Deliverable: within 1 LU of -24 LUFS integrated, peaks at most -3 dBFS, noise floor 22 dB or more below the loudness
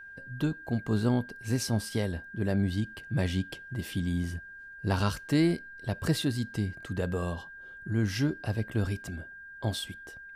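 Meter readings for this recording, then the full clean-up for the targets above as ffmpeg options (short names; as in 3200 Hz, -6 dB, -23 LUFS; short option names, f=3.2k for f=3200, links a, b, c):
steady tone 1600 Hz; tone level -44 dBFS; loudness -31.5 LUFS; peak -13.5 dBFS; loudness target -24.0 LUFS
-> -af "bandreject=f=1.6k:w=30"
-af "volume=7.5dB"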